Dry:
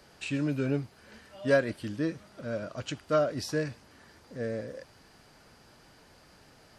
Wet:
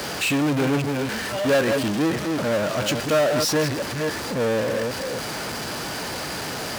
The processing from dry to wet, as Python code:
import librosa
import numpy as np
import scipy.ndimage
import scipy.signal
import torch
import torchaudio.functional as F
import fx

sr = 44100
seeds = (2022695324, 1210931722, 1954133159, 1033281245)

y = fx.reverse_delay(x, sr, ms=273, wet_db=-10.5)
y = fx.power_curve(y, sr, exponent=0.35)
y = fx.highpass(y, sr, hz=150.0, slope=6)